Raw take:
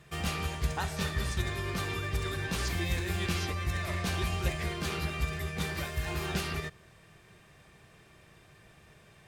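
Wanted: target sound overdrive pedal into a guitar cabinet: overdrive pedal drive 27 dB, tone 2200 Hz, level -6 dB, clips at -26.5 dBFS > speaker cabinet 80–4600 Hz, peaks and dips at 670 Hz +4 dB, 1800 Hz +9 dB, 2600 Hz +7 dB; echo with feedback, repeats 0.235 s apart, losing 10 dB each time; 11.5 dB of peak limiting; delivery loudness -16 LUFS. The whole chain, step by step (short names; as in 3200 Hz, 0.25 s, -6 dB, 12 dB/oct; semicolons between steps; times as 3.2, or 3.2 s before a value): limiter -29 dBFS; feedback echo 0.235 s, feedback 32%, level -10 dB; overdrive pedal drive 27 dB, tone 2200 Hz, level -6 dB, clips at -26.5 dBFS; speaker cabinet 80–4600 Hz, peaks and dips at 670 Hz +4 dB, 1800 Hz +9 dB, 2600 Hz +7 dB; gain +13.5 dB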